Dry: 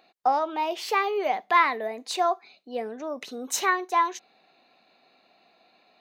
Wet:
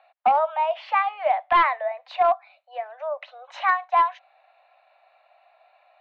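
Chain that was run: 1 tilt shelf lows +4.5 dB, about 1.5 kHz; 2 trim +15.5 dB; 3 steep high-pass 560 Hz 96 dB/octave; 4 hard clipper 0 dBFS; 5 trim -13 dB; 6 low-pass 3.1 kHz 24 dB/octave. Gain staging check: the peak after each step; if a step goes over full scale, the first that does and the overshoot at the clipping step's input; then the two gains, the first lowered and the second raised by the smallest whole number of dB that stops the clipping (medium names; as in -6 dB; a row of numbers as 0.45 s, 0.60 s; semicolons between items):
-7.0 dBFS, +8.5 dBFS, +7.0 dBFS, 0.0 dBFS, -13.0 dBFS, -11.5 dBFS; step 2, 7.0 dB; step 2 +8.5 dB, step 5 -6 dB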